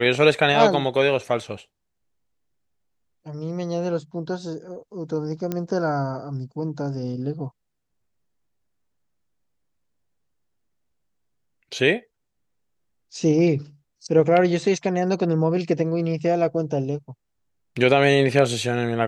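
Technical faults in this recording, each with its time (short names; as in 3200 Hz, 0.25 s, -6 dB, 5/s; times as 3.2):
5.52 pop -13 dBFS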